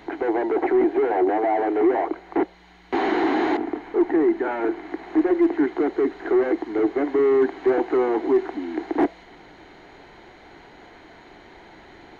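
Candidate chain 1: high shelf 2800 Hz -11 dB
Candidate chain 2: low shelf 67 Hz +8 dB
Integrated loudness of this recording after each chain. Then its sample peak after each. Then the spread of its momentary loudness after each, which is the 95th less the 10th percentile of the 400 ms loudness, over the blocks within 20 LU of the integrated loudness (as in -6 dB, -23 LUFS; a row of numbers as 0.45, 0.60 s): -22.5, -22.0 LUFS; -11.5, -10.5 dBFS; 7, 7 LU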